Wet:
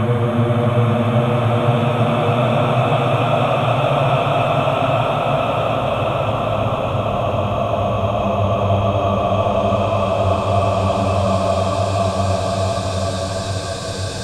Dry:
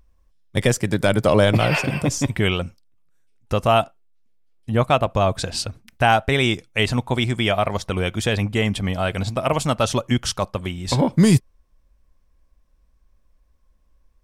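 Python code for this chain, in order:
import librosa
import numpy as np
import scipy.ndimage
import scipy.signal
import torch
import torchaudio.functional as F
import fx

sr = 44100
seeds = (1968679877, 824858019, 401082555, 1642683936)

y = fx.hpss(x, sr, part='harmonic', gain_db=4)
y = fx.paulstretch(y, sr, seeds[0], factor=21.0, window_s=0.5, from_s=4.75)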